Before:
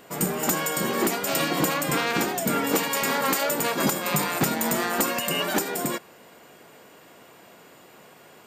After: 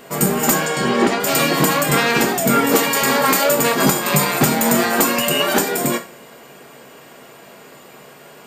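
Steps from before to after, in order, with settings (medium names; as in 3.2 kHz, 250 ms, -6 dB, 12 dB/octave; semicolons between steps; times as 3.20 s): 0.54–1.19 s: low-pass 6.9 kHz -> 4.2 kHz 12 dB/octave; two-slope reverb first 0.31 s, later 1.8 s, from -26 dB, DRR 3.5 dB; trim +6.5 dB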